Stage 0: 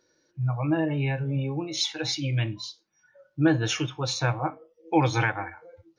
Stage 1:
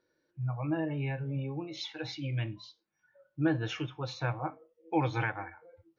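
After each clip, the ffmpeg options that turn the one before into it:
-af "lowpass=3.2k,volume=-7dB"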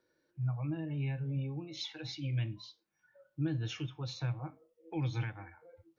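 -filter_complex "[0:a]acrossover=split=260|3000[a][b][c];[b]acompressor=threshold=-51dB:ratio=3[d];[a][d][c]amix=inputs=3:normalize=0"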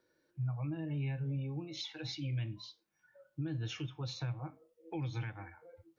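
-af "alimiter=level_in=7dB:limit=-24dB:level=0:latency=1:release=227,volume=-7dB,volume=1dB"

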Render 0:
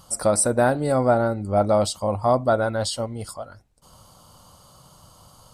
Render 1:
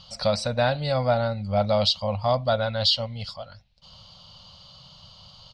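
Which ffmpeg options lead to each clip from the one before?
-af "firequalizer=gain_entry='entry(190,0);entry(340,-24);entry(530,-3);entry(1300,-5);entry(2800,11);entry(4300,12);entry(8800,-27)':delay=0.05:min_phase=1"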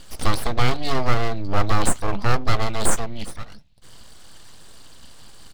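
-af "aeval=exprs='abs(val(0))':c=same,lowshelf=f=170:g=7.5,volume=3dB"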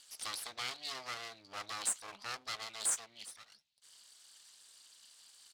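-af "bandpass=f=7.2k:t=q:w=0.61:csg=0,volume=-7dB"

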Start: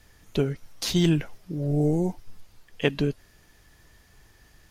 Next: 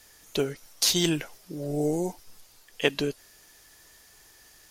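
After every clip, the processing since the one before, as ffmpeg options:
-af "bass=f=250:g=-12,treble=f=4k:g=9,volume=1dB"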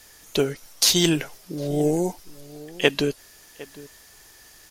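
-filter_complex "[0:a]asplit=2[a][b];[b]adelay=758,volume=-19dB,highshelf=f=4k:g=-17.1[c];[a][c]amix=inputs=2:normalize=0,volume=5dB"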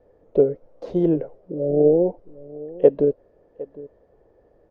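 -af "lowpass=f=520:t=q:w=4.9,volume=-2dB"

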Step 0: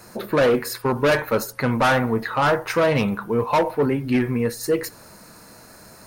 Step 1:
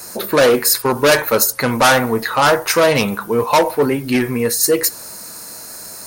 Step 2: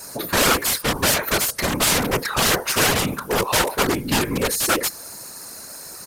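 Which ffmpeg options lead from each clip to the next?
-af "bass=f=250:g=-6,treble=f=4k:g=12,volume=6dB"
-af "aeval=exprs='(mod(3.16*val(0)+1,2)-1)/3.16':c=same,afftfilt=real='hypot(re,im)*cos(2*PI*random(0))':imag='hypot(re,im)*sin(2*PI*random(1))':win_size=512:overlap=0.75,aresample=32000,aresample=44100,volume=2.5dB"

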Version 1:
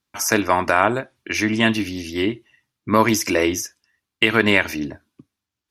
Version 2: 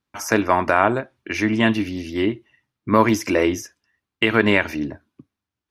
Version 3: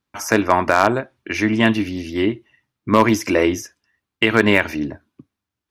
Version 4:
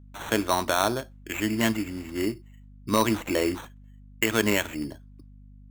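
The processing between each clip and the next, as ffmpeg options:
-af "highshelf=f=3.3k:g=-11,volume=1dB"
-af "aeval=exprs='0.891*(cos(1*acos(clip(val(0)/0.891,-1,1)))-cos(1*PI/2))+0.0398*(cos(3*acos(clip(val(0)/0.891,-1,1)))-cos(3*PI/2))':c=same,aeval=exprs='0.631*(abs(mod(val(0)/0.631+3,4)-2)-1)':c=same,volume=3dB"
-af "acrusher=samples=9:mix=1:aa=0.000001,aeval=exprs='val(0)+0.0112*(sin(2*PI*50*n/s)+sin(2*PI*2*50*n/s)/2+sin(2*PI*3*50*n/s)/3+sin(2*PI*4*50*n/s)/4+sin(2*PI*5*50*n/s)/5)':c=same,volume=-8.5dB"

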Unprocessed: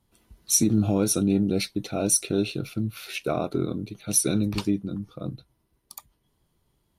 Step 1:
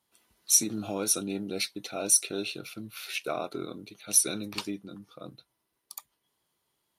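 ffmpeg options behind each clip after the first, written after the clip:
-af "highpass=f=940:p=1"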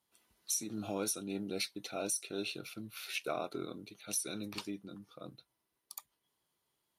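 -af "alimiter=limit=-19.5dB:level=0:latency=1:release=267,volume=-4.5dB"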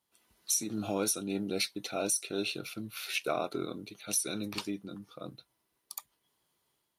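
-af "dynaudnorm=f=100:g=5:m=5dB"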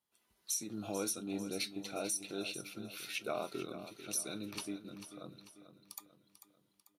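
-filter_complex "[0:a]flanger=delay=4.8:depth=2:regen=82:speed=0.32:shape=sinusoidal,asplit=2[a][b];[b]aecho=0:1:443|886|1329|1772|2215:0.251|0.116|0.0532|0.0244|0.0112[c];[a][c]amix=inputs=2:normalize=0,volume=-2dB"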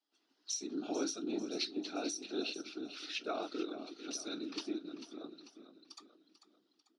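-af "afftfilt=real='hypot(re,im)*cos(2*PI*random(0))':imag='hypot(re,im)*sin(2*PI*random(1))':win_size=512:overlap=0.75,highpass=f=260:w=0.5412,highpass=f=260:w=1.3066,equalizer=f=300:t=q:w=4:g=8,equalizer=f=540:t=q:w=4:g=-7,equalizer=f=1k:t=q:w=4:g=-7,equalizer=f=2.2k:t=q:w=4:g=-8,equalizer=f=5k:t=q:w=4:g=5,lowpass=f=5.5k:w=0.5412,lowpass=f=5.5k:w=1.3066,volume=8dB"

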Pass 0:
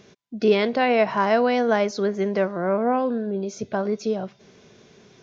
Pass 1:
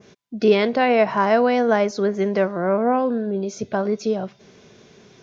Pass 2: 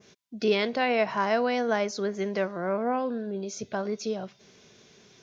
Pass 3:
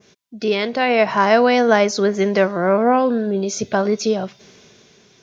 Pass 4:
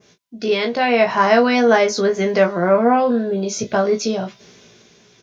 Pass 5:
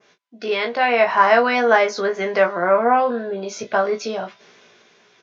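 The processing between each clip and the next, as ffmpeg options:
-af "adynamicequalizer=threshold=0.01:dfrequency=3700:dqfactor=0.93:tfrequency=3700:tqfactor=0.93:attack=5:release=100:ratio=0.375:range=2:mode=cutabove:tftype=bell,volume=2.5dB"
-af "highshelf=f=2.1k:g=9,volume=-9dB"
-af "dynaudnorm=f=210:g=9:m=9dB,volume=3.5dB"
-af "aecho=1:1:17|36:0.596|0.266,volume=-1dB"
-af "bandpass=f=1.3k:t=q:w=0.69:csg=0,volume=2.5dB"

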